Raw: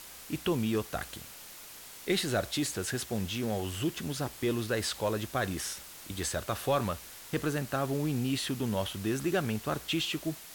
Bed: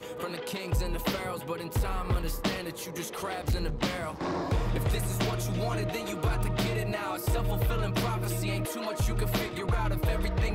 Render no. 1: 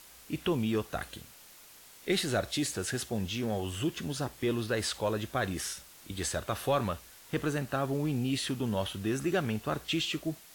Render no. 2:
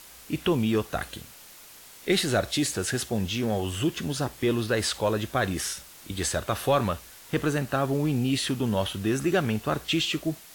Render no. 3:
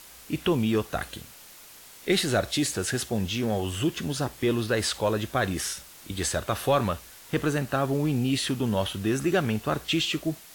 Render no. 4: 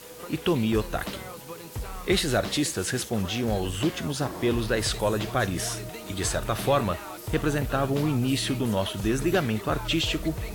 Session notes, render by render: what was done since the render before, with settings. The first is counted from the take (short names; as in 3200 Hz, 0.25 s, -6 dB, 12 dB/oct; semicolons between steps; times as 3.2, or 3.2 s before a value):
noise print and reduce 6 dB
gain +5.5 dB
nothing audible
add bed -6 dB